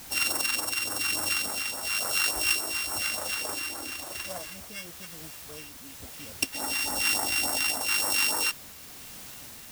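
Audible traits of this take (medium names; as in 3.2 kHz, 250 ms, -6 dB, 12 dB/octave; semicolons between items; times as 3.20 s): a buzz of ramps at a fixed pitch in blocks of 16 samples; phasing stages 2, 3.5 Hz, lowest notch 530–2900 Hz; a quantiser's noise floor 8-bit, dither triangular; tremolo triangle 1 Hz, depth 30%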